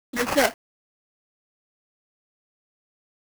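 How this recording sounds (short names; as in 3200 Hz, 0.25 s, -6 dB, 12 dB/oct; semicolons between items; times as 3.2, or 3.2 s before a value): aliases and images of a low sample rate 3700 Hz, jitter 20%; tremolo saw up 8.6 Hz, depth 30%; a quantiser's noise floor 8-bit, dither none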